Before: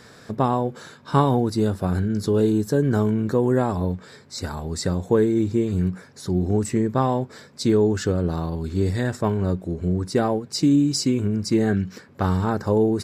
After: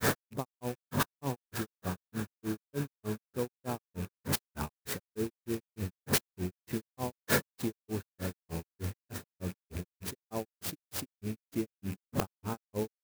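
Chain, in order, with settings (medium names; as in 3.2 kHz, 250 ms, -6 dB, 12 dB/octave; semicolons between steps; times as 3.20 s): rattle on loud lows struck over -31 dBFS, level -28 dBFS; in parallel at -1 dB: compressor with a negative ratio -31 dBFS, ratio -1; on the sum: inverted gate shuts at -19 dBFS, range -26 dB; on a send: echo that smears into a reverb 742 ms, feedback 67%, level -14.5 dB; on the sum: sine folder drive 13 dB, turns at -14 dBFS; granulator 153 ms, grains 3.3 per s, pitch spread up and down by 0 st; sampling jitter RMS 0.058 ms; trim -3.5 dB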